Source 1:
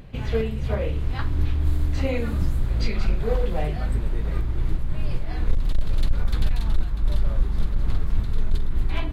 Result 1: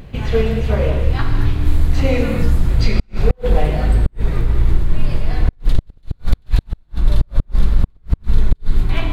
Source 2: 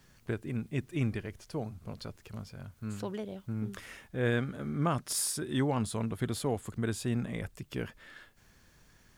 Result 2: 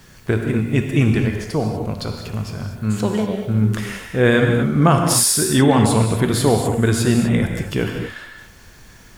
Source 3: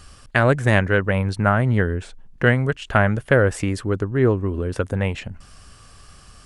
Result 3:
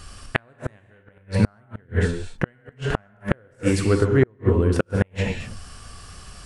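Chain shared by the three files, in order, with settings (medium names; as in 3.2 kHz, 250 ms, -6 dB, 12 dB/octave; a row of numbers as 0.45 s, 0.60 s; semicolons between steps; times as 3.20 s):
gated-style reverb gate 270 ms flat, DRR 2.5 dB; inverted gate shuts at -8 dBFS, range -40 dB; peak normalisation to -1.5 dBFS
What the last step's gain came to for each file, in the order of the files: +6.5 dB, +15.0 dB, +3.0 dB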